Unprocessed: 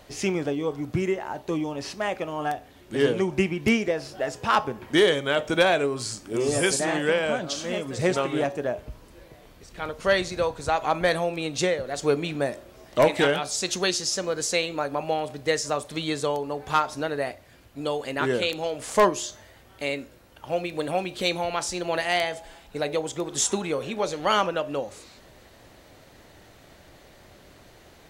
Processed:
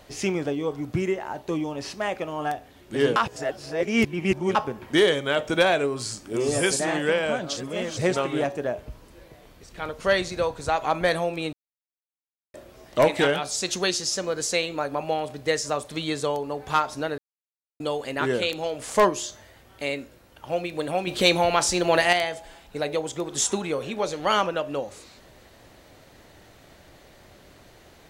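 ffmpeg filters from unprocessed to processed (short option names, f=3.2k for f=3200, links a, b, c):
-filter_complex "[0:a]asettb=1/sr,asplit=3[a][b][c];[a]atrim=end=21.074[d];[b]atrim=start=21.07:end=22.13,asetpts=PTS-STARTPTS,afade=t=in:d=0.004:c=qsin,afade=t=out:st=1.056:d=0.004:c=qsin,acontrast=74[e];[c]atrim=start=22.126[f];[d][e]acrossfade=d=0.004:c1=hsin:c2=qsin[g];[g][f]acrossfade=d=0.004:c1=qsin:c2=hsin,asplit=9[h][i][j][k][l][m][n][o][p];[h]atrim=end=3.162[q];[i]atrim=start=3.158:end=4.552,asetpts=PTS-STARTPTS,areverse[r];[j]atrim=start=4.548:end=7.572[s];[k]atrim=start=7.568:end=7.972,asetpts=PTS-STARTPTS,areverse[t];[l]atrim=start=7.968:end=11.53,asetpts=PTS-STARTPTS,afade=t=out:st=3.558:d=0.004:c=hsin[u];[m]atrim=start=11.53:end=12.54,asetpts=PTS-STARTPTS,volume=0[v];[n]atrim=start=12.54:end=17.18,asetpts=PTS-STARTPTS,afade=t=in:d=0.004:c=hsin,afade=t=out:st=4.636:d=0.004:c=hsin[w];[o]atrim=start=17.18:end=17.8,asetpts=PTS-STARTPTS,volume=0[x];[p]atrim=start=17.8,asetpts=PTS-STARTPTS,afade=t=in:d=0.004:c=hsin[y];[q][r]acrossfade=d=0.004:c1=hsin:c2=hsin[z];[z][s]acrossfade=d=0.004:c1=hsin:c2=hsin[aa];[aa][t]acrossfade=d=0.004:c1=hsin:c2=hsin[ab];[u][v][w][x][y]concat=n=5:v=0:a=1[ac];[ab][ac]acrossfade=d=0.004:c1=hsin:c2=hsin"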